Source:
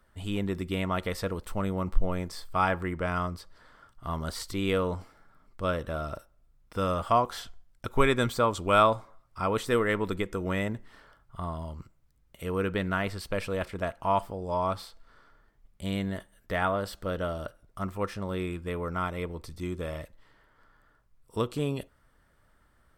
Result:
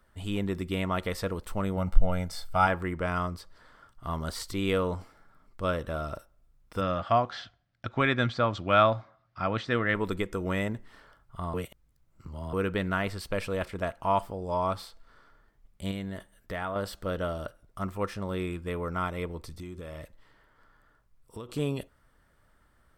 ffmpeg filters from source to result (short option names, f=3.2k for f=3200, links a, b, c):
-filter_complex "[0:a]asettb=1/sr,asplit=3[a][b][c];[a]atrim=end=1.774[d];[b]atrim=start=1.77:end=2.67,asetpts=PTS-STARTPTS,afade=t=in:d=0.004:c=qsin,afade=t=out:st=0.896:d=0.004:c=qsin,aecho=1:1:1.4:0.67,atrim=end_sample=39690[e];[c]atrim=start=2.666[f];[d][e]acrossfade=d=0.004:c1=hsin:c2=qsin[g];[g][f]acrossfade=d=0.004:c1=qsin:c2=hsin,asplit=3[h][i][j];[h]afade=t=out:st=6.8:d=0.02[k];[i]highpass=100,equalizer=f=110:t=q:w=4:g=6,equalizer=f=430:t=q:w=4:g=-9,equalizer=f=680:t=q:w=4:g=3,equalizer=f=980:t=q:w=4:g=-6,equalizer=f=1.7k:t=q:w=4:g=4,lowpass=f=4.9k:w=0.5412,lowpass=f=4.9k:w=1.3066,afade=t=in:st=6.8:d=0.02,afade=t=out:st=9.94:d=0.02[l];[j]afade=t=in:st=9.94:d=0.02[m];[k][l][m]amix=inputs=3:normalize=0,asettb=1/sr,asplit=3[n][o][p];[n]atrim=end=15.914[q];[o]atrim=start=15.91:end=16.76,asetpts=PTS-STARTPTS,afade=t=in:d=0.004:c=qsin,afade=t=out:st=0.846:d=0.004:c=qsin,acompressor=threshold=-34dB:ratio=2:attack=3.2:release=140:knee=1:detection=peak[r];[p]atrim=start=16.756[s];[q][r]acrossfade=d=0.004:c1=hsin:c2=qsin[t];[t][s]acrossfade=d=0.004:c1=qsin:c2=hsin,asettb=1/sr,asplit=3[u][v][w];[u]atrim=end=19.524[x];[v]atrim=start=19.52:end=21.49,asetpts=PTS-STARTPTS,afade=t=in:d=0.004:c=qsin,afade=t=out:st=1.966:d=0.004:c=qsin,acompressor=threshold=-36dB:ratio=10:attack=3.2:release=140:knee=1:detection=peak[y];[w]atrim=start=21.486[z];[x][y]acrossfade=d=0.004:c1=hsin:c2=qsin[aa];[aa][z]acrossfade=d=0.004:c1=qsin:c2=hsin,asplit=3[ab][ac][ad];[ab]atrim=end=11.542[ae];[ac]atrim=start=11.538:end=12.532,asetpts=PTS-STARTPTS,areverse[af];[ad]atrim=start=12.528[ag];[ae][af]acrossfade=d=0.004:c1=hsin:c2=hsin[ah];[ah][ag]acrossfade=d=0.004:c1=hsin:c2=hsin"